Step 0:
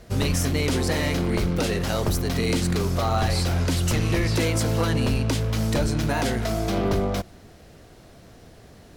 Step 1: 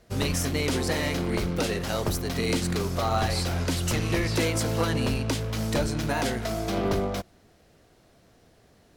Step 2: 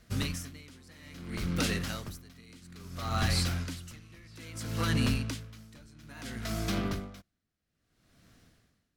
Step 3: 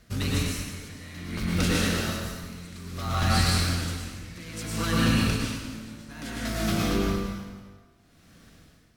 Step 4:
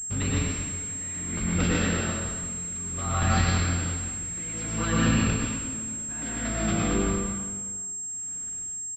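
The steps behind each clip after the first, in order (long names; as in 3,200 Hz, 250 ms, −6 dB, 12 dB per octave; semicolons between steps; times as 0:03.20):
low-shelf EQ 180 Hz −4.5 dB; expander for the loud parts 1.5 to 1, over −39 dBFS
flat-topped bell 580 Hz −9 dB; tremolo with a sine in dB 0.6 Hz, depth 26 dB
in parallel at −8 dB: hard clipping −35 dBFS, distortion −5 dB; on the sum: dense smooth reverb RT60 1.5 s, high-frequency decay 0.85×, pre-delay 90 ms, DRR −4.5 dB
repeating echo 375 ms, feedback 36%, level −23 dB; switching amplifier with a slow clock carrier 7,500 Hz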